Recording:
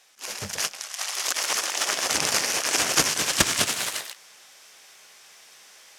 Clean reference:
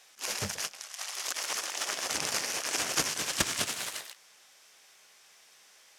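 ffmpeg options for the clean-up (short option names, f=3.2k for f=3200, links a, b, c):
-af "asetnsamples=n=441:p=0,asendcmd='0.53 volume volume -8dB',volume=0dB"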